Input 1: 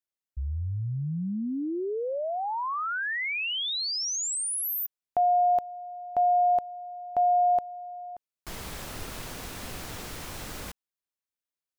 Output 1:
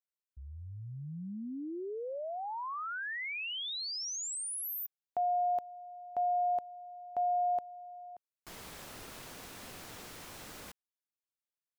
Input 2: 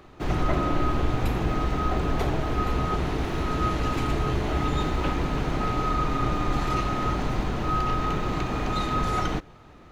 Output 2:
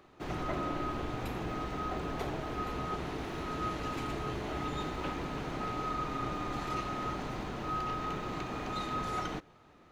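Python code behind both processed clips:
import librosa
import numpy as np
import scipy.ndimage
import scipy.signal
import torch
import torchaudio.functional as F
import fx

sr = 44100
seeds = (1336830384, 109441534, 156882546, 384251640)

y = fx.low_shelf(x, sr, hz=98.0, db=-11.5)
y = y * librosa.db_to_amplitude(-8.0)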